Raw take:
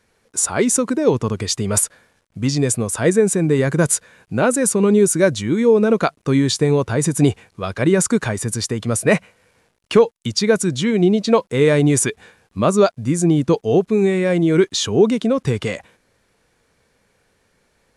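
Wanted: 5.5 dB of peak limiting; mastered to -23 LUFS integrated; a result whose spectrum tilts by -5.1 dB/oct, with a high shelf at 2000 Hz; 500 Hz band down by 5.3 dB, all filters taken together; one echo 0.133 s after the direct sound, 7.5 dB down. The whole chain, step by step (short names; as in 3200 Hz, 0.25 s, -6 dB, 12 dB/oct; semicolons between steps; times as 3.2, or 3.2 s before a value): bell 500 Hz -6.5 dB; high shelf 2000 Hz -3 dB; limiter -11 dBFS; echo 0.133 s -7.5 dB; gain -2 dB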